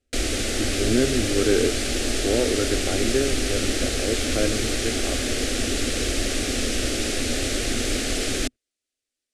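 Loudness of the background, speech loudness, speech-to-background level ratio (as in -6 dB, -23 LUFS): -24.5 LUFS, -27.0 LUFS, -2.5 dB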